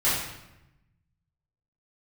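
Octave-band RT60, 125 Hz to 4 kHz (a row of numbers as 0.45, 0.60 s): 1.7, 1.3, 0.95, 0.90, 0.90, 0.70 s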